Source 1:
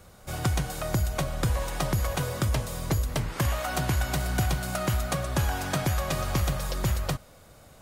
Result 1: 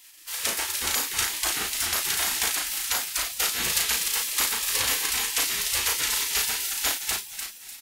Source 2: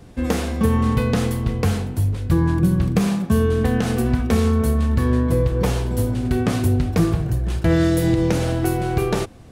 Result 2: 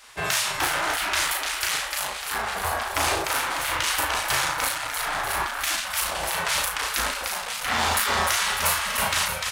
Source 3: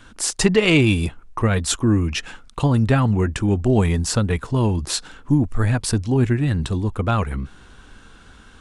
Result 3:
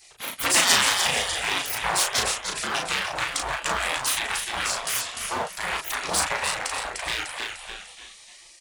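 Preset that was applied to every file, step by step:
bass shelf 300 Hz +4 dB; on a send: frequency-shifting echo 299 ms, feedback 47%, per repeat -43 Hz, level -5 dB; on the sum: overload inside the chain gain 14.5 dB; high-pass 210 Hz 12 dB/octave; spectral gate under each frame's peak -20 dB weak; doubling 36 ms -4 dB; normalise loudness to -24 LUFS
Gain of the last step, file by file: +12.0 dB, +9.0 dB, +8.5 dB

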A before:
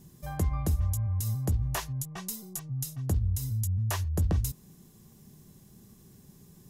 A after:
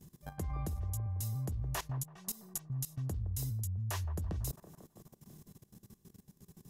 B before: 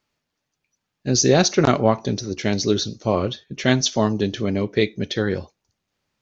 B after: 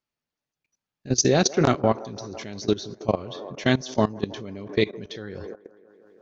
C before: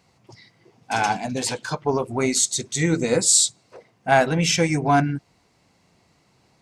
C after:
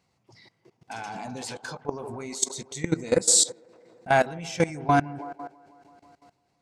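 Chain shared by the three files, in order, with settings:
feedback echo behind a band-pass 165 ms, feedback 64%, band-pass 640 Hz, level -11 dB; level held to a coarse grid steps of 18 dB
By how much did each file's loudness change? -7.5 LU, -3.5 LU, -4.5 LU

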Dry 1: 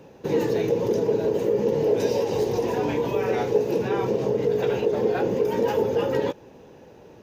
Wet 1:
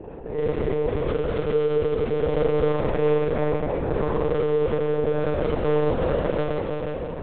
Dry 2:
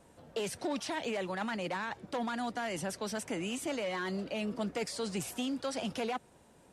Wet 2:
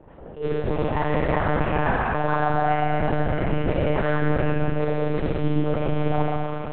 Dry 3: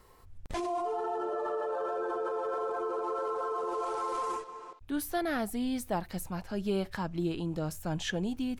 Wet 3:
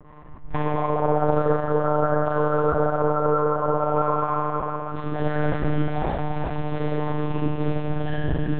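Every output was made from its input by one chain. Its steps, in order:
low-pass 1.6 kHz 12 dB/octave; reverb removal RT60 0.76 s; de-hum 176.7 Hz, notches 5; reverse; compression 8:1, threshold -37 dBFS; reverse; harmonic tremolo 4.6 Hz, depth 70%, crossover 740 Hz; in parallel at -8 dB: integer overflow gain 34.5 dB; on the sum: Schroeder reverb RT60 3.7 s, combs from 32 ms, DRR -9.5 dB; monotone LPC vocoder at 8 kHz 150 Hz; attacks held to a fixed rise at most 180 dB/s; normalise loudness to -24 LUFS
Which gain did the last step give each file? +8.5 dB, +10.5 dB, +9.5 dB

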